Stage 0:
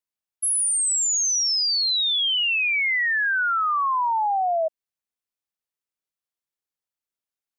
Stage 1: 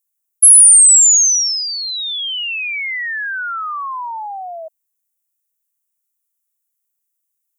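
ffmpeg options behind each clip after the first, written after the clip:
-af "highpass=950,aexciter=amount=8.6:drive=1.3:freq=6.4k"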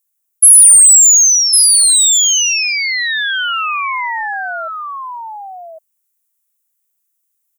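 -af "highpass=650,acontrast=37,aecho=1:1:1104:0.562,volume=-1dB"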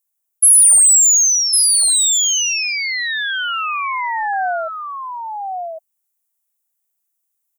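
-af "equalizer=f=720:t=o:w=0.56:g=11,volume=-4.5dB"

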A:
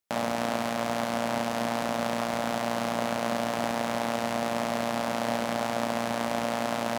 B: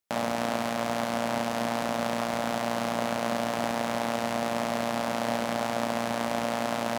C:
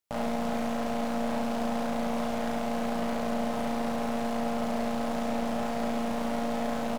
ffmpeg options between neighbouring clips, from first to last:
-af anull
-filter_complex "[0:a]aeval=exprs='(tanh(22.4*val(0)+0.65)-tanh(0.65))/22.4':c=same,asplit=2[a][b];[b]adelay=39,volume=-3dB[c];[a][c]amix=inputs=2:normalize=0,aecho=1:1:73:0.376,volume=1dB"

